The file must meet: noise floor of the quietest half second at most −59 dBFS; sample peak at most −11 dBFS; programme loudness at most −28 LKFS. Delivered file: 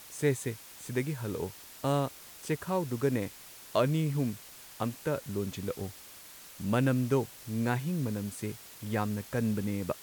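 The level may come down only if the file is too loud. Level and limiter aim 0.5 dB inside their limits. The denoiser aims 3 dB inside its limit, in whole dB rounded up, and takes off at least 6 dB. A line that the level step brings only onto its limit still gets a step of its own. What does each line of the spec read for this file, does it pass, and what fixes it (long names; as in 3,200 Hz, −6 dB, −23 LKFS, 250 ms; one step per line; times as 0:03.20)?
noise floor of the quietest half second −50 dBFS: out of spec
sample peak −13.0 dBFS: in spec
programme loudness −32.5 LKFS: in spec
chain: broadband denoise 12 dB, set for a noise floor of −50 dBFS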